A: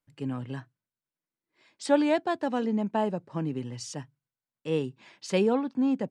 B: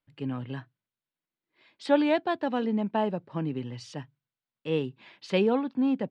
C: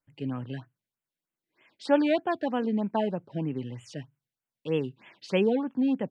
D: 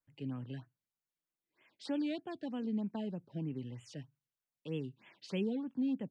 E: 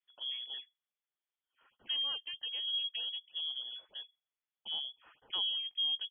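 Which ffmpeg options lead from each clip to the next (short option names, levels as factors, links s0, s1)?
-af "highshelf=f=5100:t=q:w=1.5:g=-11"
-af "afftfilt=real='re*(1-between(b*sr/1024,990*pow(5000/990,0.5+0.5*sin(2*PI*3.2*pts/sr))/1.41,990*pow(5000/990,0.5+0.5*sin(2*PI*3.2*pts/sr))*1.41))':imag='im*(1-between(b*sr/1024,990*pow(5000/990,0.5+0.5*sin(2*PI*3.2*pts/sr))/1.41,990*pow(5000/990,0.5+0.5*sin(2*PI*3.2*pts/sr))*1.41))':win_size=1024:overlap=0.75"
-filter_complex "[0:a]acrossover=split=340|3000[s0][s1][s2];[s1]acompressor=threshold=0.00447:ratio=2.5[s3];[s0][s3][s2]amix=inputs=3:normalize=0,volume=0.473"
-af "lowpass=f=3000:t=q:w=0.5098,lowpass=f=3000:t=q:w=0.6013,lowpass=f=3000:t=q:w=0.9,lowpass=f=3000:t=q:w=2.563,afreqshift=-3500"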